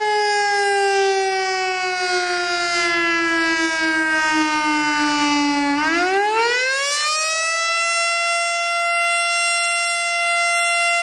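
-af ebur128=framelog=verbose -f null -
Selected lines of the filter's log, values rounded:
Integrated loudness:
  I:         -17.7 LUFS
  Threshold: -27.7 LUFS
Loudness range:
  LRA:         0.9 LU
  Threshold: -37.7 LUFS
  LRA low:   -18.3 LUFS
  LRA high:  -17.4 LUFS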